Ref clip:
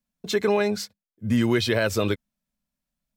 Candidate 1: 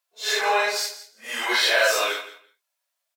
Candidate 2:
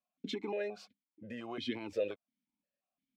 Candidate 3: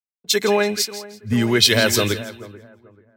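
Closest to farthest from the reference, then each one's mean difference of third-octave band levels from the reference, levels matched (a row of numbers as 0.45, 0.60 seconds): 3, 2, 1; 5.0, 7.5, 14.5 decibels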